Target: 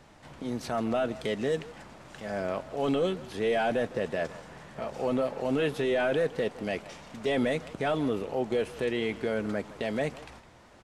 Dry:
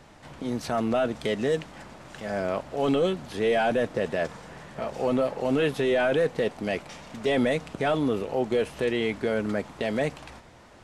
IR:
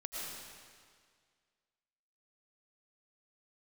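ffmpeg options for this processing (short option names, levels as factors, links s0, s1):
-filter_complex "[0:a]asplit=2[s0][s1];[s1]adelay=160,highpass=300,lowpass=3400,asoftclip=type=hard:threshold=0.0631,volume=0.178[s2];[s0][s2]amix=inputs=2:normalize=0,volume=0.668"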